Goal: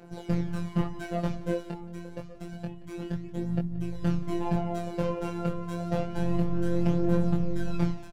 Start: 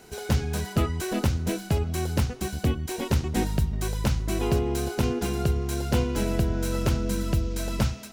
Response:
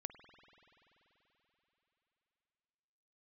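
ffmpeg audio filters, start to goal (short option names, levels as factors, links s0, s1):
-filter_complex "[0:a]lowpass=f=1100:p=1,equalizer=f=140:t=o:w=1:g=4,bandreject=f=50:t=h:w=6,bandreject=f=100:t=h:w=6,bandreject=f=150:t=h:w=6,bandreject=f=200:t=h:w=6,bandreject=f=250:t=h:w=6,bandreject=f=300:t=h:w=6,bandreject=f=350:t=h:w=6,asettb=1/sr,asplit=3[s0][s1][s2];[s0]atrim=end=1.604[s3];[s1]atrim=start=1.6:end=4.02,asetpts=PTS-STARTPTS,afade=t=in:d=0.004:c=qsin,afade=t=out:st=2.416:d=0.004:c=qsin,acompressor=threshold=0.0282:ratio=6[s4];[s2]atrim=start=4.016[s5];[s3][s4]acrossfade=d=0.004:c1=hsin:c2=qsin[s6];[s6][s5]acrossfade=d=0.004:c1=qsin:c2=hsin,aphaser=in_gain=1:out_gain=1:delay=2.3:decay=0.53:speed=0.28:type=triangular,asoftclip=type=hard:threshold=0.141,flanger=delay=19.5:depth=4.6:speed=0.82,afftfilt=real='hypot(re,im)*cos(PI*b)':imag='0':win_size=1024:overlap=0.75,aecho=1:1:177|354|531:0.119|0.0428|0.0154,volume=1.68"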